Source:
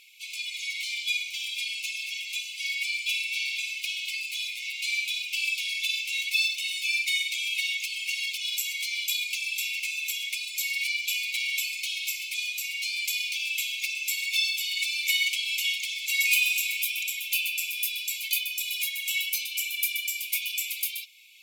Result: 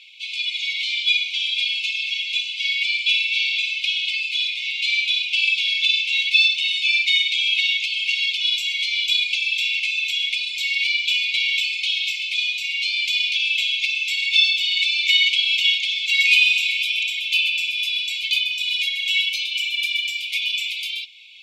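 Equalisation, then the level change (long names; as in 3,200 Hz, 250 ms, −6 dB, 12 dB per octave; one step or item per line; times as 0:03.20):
low-pass with resonance 3,400 Hz, resonance Q 2.4
spectral tilt +2.5 dB per octave
0.0 dB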